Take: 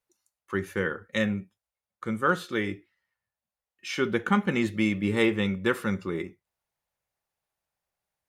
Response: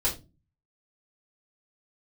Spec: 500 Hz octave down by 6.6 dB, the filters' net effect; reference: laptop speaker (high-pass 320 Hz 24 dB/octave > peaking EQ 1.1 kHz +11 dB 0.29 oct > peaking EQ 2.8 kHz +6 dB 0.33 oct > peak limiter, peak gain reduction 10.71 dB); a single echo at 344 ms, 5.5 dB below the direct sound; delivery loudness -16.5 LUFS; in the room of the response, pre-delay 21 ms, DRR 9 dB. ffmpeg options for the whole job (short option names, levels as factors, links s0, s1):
-filter_complex "[0:a]equalizer=f=500:t=o:g=-8,aecho=1:1:344:0.531,asplit=2[s0][s1];[1:a]atrim=start_sample=2205,adelay=21[s2];[s1][s2]afir=irnorm=-1:irlink=0,volume=0.141[s3];[s0][s3]amix=inputs=2:normalize=0,highpass=f=320:w=0.5412,highpass=f=320:w=1.3066,equalizer=f=1100:t=o:w=0.29:g=11,equalizer=f=2800:t=o:w=0.33:g=6,volume=6.31,alimiter=limit=0.668:level=0:latency=1"